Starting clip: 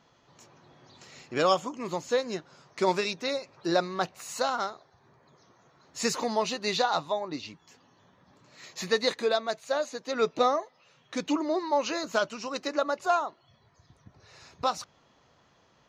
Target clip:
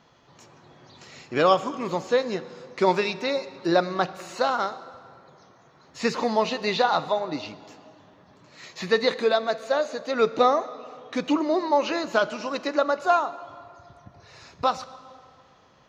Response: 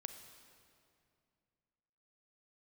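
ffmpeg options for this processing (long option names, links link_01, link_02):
-filter_complex "[0:a]acrossover=split=4500[link_01][link_02];[link_02]acompressor=threshold=-49dB:ratio=4:attack=1:release=60[link_03];[link_01][link_03]amix=inputs=2:normalize=0,asplit=2[link_04][link_05];[1:a]atrim=start_sample=2205,lowpass=7300[link_06];[link_05][link_06]afir=irnorm=-1:irlink=0,volume=1.5dB[link_07];[link_04][link_07]amix=inputs=2:normalize=0"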